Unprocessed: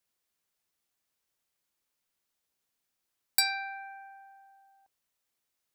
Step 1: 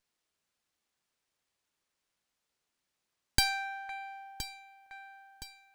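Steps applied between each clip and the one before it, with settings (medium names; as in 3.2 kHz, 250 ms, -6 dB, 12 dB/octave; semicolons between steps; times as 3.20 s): echo whose repeats swap between lows and highs 509 ms, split 2.3 kHz, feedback 65%, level -9 dB; sliding maximum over 3 samples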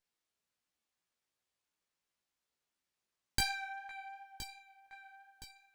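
chorus 2.8 Hz, delay 16 ms, depth 2 ms; trim -2.5 dB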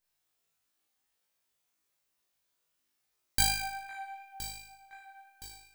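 treble shelf 11 kHz +11 dB; on a send: flutter echo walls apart 3.3 m, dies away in 0.68 s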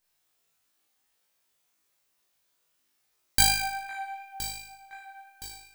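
bass shelf 170 Hz -3 dB; trim +6 dB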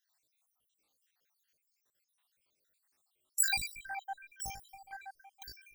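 random holes in the spectrogram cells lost 74%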